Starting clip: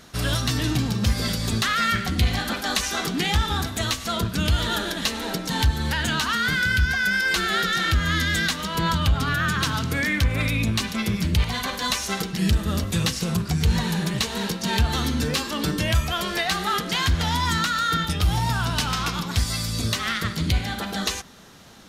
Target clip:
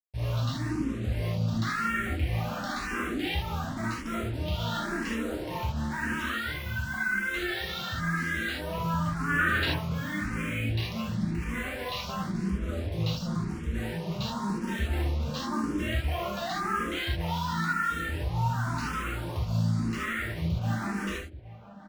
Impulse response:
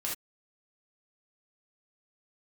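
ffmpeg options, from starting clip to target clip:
-filter_complex "[0:a]lowpass=f=3.3k:p=1,afwtdn=0.0251,alimiter=limit=-23.5dB:level=0:latency=1:release=75,asettb=1/sr,asplit=3[a][b][c];[a]atrim=end=9.294[d];[b]atrim=start=9.29:end=9.72,asetpts=PTS-STARTPTS,afade=t=in:d=0.004:c=qsin,afade=t=out:st=0.426:d=0.004:c=qsin,acontrast=80[e];[c]atrim=start=9.716[f];[d][e]acrossfade=d=0.004:c1=hsin:c2=qsin[g];[g][f]acrossfade=d=0.004:c1=qsin:c2=hsin,acrusher=bits=6:mix=0:aa=0.5,asplit=2[h][i];[i]adelay=816.3,volume=-15dB,highshelf=f=4k:g=-18.4[j];[h][j]amix=inputs=2:normalize=0[k];[1:a]atrim=start_sample=2205[l];[k][l]afir=irnorm=-1:irlink=0,asplit=2[m][n];[n]afreqshift=0.94[o];[m][o]amix=inputs=2:normalize=1"

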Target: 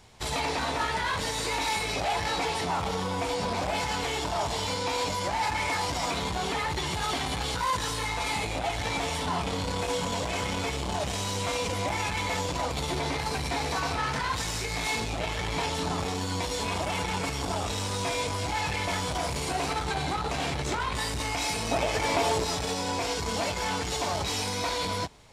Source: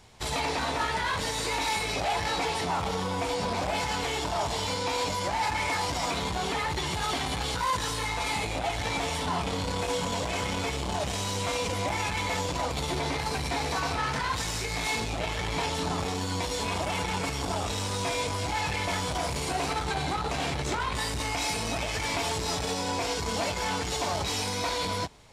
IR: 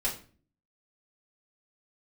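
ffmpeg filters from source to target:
-filter_complex "[0:a]asettb=1/sr,asplit=3[a][b][c];[a]atrim=end=21.714[d];[b]atrim=start=21.71:end=22.44,asetpts=PTS-STARTPTS,afade=t=in:d=0.004:c=qsin,afade=t=out:st=0.726:d=0.004:c=qsin,equalizer=f=540:w=0.66:g=8[e];[c]atrim=start=22.436[f];[d][e]acrossfade=d=0.004:c1=hsin:c2=qsin[g];[g][f]acrossfade=d=0.004:c1=qsin:c2=hsin"

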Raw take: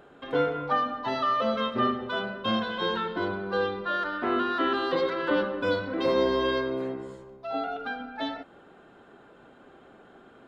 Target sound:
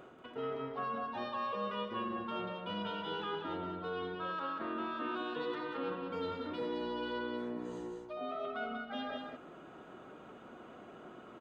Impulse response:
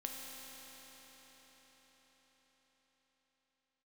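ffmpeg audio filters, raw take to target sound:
-af "lowshelf=f=66:g=-9.5,areverse,acompressor=threshold=-39dB:ratio=4,areverse,aecho=1:1:172:0.562,asetrate=40517,aresample=44100"

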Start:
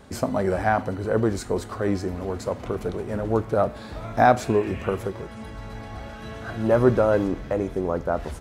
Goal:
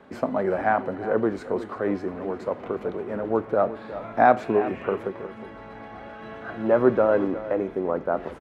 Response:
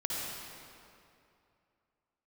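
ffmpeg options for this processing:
-filter_complex "[0:a]acrossover=split=180 3000:gain=0.141 1 0.1[a][b][c];[a][b][c]amix=inputs=3:normalize=0,asplit=2[d][e];[e]adelay=361.5,volume=-14dB,highshelf=f=4k:g=-8.13[f];[d][f]amix=inputs=2:normalize=0"

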